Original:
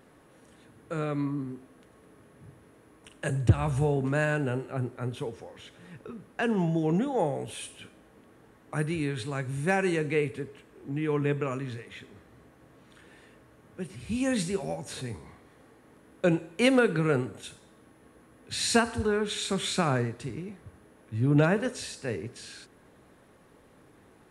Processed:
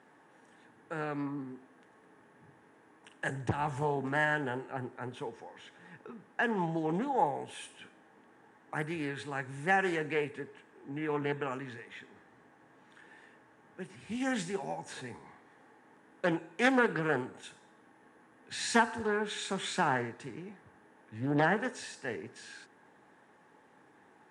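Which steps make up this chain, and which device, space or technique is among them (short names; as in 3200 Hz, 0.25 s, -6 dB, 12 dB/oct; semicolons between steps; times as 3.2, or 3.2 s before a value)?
full-range speaker at full volume (Doppler distortion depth 0.81 ms; speaker cabinet 180–9000 Hz, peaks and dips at 560 Hz -3 dB, 860 Hz +10 dB, 1700 Hz +8 dB, 4300 Hz -4 dB); gain -5 dB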